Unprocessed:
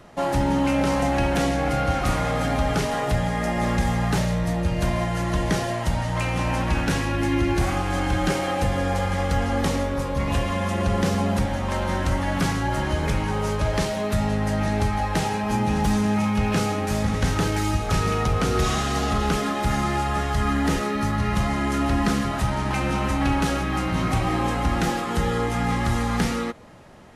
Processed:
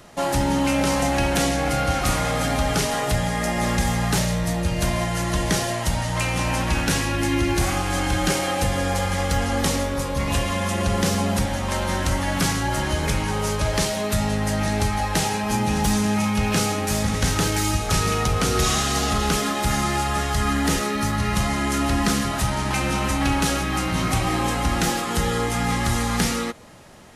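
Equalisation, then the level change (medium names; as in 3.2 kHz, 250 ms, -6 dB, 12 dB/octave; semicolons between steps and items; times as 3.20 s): treble shelf 3.5 kHz +11 dB; 0.0 dB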